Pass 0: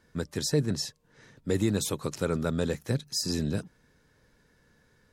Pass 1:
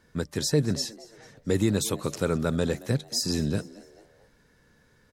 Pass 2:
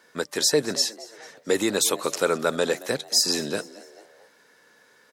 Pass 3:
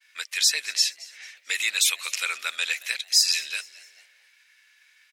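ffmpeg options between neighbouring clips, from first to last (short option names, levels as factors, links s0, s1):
-filter_complex "[0:a]asplit=4[s0][s1][s2][s3];[s1]adelay=223,afreqshift=110,volume=0.0944[s4];[s2]adelay=446,afreqshift=220,volume=0.0407[s5];[s3]adelay=669,afreqshift=330,volume=0.0174[s6];[s0][s4][s5][s6]amix=inputs=4:normalize=0,volume=1.33"
-af "highpass=470,volume=2.51"
-af "highpass=f=2400:t=q:w=4.1,agate=range=0.0224:threshold=0.00224:ratio=3:detection=peak"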